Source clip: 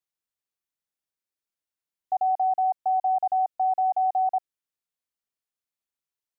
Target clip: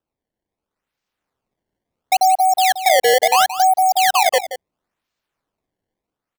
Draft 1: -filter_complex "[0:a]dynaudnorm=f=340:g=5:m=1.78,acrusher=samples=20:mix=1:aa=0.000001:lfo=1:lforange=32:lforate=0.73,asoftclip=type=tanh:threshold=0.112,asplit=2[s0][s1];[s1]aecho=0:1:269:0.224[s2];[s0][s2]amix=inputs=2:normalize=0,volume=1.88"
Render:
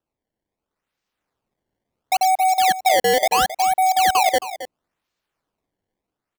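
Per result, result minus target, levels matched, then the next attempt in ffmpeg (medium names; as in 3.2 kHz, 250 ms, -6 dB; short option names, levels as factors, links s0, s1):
saturation: distortion +19 dB; echo 94 ms late
-filter_complex "[0:a]dynaudnorm=f=340:g=5:m=1.78,acrusher=samples=20:mix=1:aa=0.000001:lfo=1:lforange=32:lforate=0.73,asoftclip=type=tanh:threshold=0.422,asplit=2[s0][s1];[s1]aecho=0:1:269:0.224[s2];[s0][s2]amix=inputs=2:normalize=0,volume=1.88"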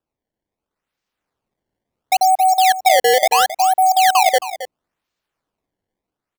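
echo 94 ms late
-filter_complex "[0:a]dynaudnorm=f=340:g=5:m=1.78,acrusher=samples=20:mix=1:aa=0.000001:lfo=1:lforange=32:lforate=0.73,asoftclip=type=tanh:threshold=0.422,asplit=2[s0][s1];[s1]aecho=0:1:175:0.224[s2];[s0][s2]amix=inputs=2:normalize=0,volume=1.88"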